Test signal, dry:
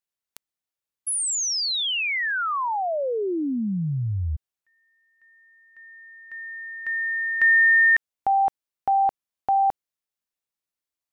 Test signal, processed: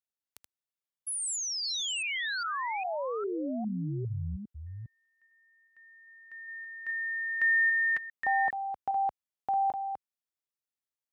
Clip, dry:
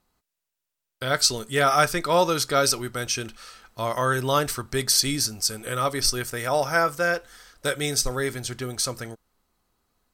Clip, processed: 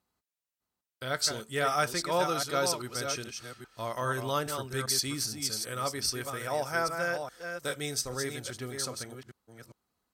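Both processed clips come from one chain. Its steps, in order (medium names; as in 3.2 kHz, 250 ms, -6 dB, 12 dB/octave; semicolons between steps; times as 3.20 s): chunks repeated in reverse 405 ms, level -6.5 dB; high-pass 62 Hz 12 dB/octave; trim -8.5 dB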